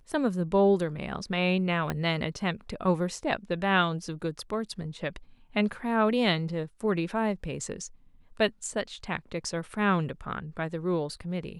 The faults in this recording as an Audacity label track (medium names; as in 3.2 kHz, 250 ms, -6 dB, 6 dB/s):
1.900000	1.900000	pop -15 dBFS